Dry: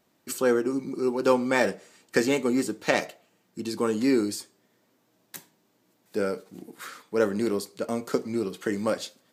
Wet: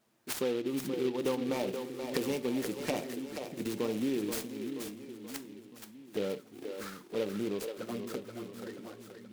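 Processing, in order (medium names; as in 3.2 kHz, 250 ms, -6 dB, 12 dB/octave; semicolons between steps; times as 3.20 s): fade out at the end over 2.92 s; ten-band graphic EQ 125 Hz +9 dB, 4 kHz -5 dB, 8 kHz +6 dB; compression 5:1, threshold -26 dBFS, peak gain reduction 10.5 dB; touch-sensitive flanger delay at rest 9.4 ms, full sweep at -27.5 dBFS; bass shelf 160 Hz -12 dB; two-band feedback delay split 310 Hz, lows 639 ms, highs 479 ms, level -7 dB; delay time shaken by noise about 2.6 kHz, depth 0.05 ms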